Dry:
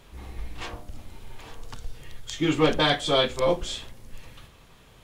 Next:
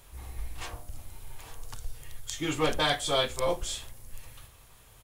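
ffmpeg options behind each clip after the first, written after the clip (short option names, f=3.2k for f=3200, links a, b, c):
-af "firequalizer=gain_entry='entry(110,0);entry(170,-9);entry(710,-2);entry(3300,-3);entry(10000,10)':delay=0.05:min_phase=1,volume=-1.5dB"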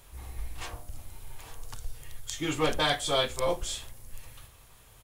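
-af anull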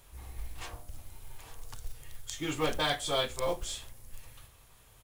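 -af "acrusher=bits=6:mode=log:mix=0:aa=0.000001,volume=-3.5dB"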